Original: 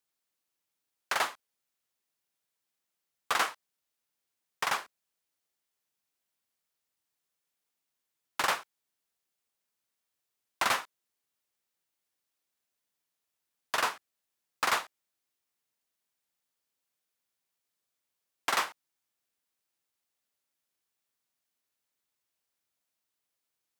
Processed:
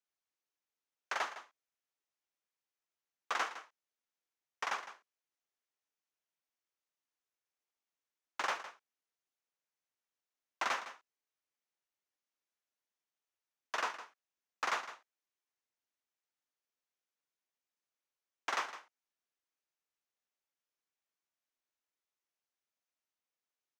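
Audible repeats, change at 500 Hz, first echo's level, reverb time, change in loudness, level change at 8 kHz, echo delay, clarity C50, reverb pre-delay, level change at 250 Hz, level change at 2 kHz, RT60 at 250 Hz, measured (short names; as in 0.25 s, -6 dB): 1, -6.5 dB, -13.5 dB, none, -7.0 dB, -10.5 dB, 0.159 s, none, none, -8.5 dB, -6.5 dB, none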